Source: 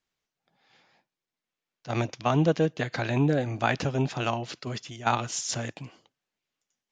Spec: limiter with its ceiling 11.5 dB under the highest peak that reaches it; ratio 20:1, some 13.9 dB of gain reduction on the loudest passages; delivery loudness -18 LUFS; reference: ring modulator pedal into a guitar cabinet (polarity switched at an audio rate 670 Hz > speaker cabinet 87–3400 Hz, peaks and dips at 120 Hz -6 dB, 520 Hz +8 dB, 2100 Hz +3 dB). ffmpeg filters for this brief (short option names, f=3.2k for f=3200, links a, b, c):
-af "acompressor=threshold=-32dB:ratio=20,alimiter=level_in=3.5dB:limit=-24dB:level=0:latency=1,volume=-3.5dB,aeval=exprs='val(0)*sgn(sin(2*PI*670*n/s))':c=same,highpass=87,equalizer=f=120:t=q:w=4:g=-6,equalizer=f=520:t=q:w=4:g=8,equalizer=f=2.1k:t=q:w=4:g=3,lowpass=f=3.4k:w=0.5412,lowpass=f=3.4k:w=1.3066,volume=19dB"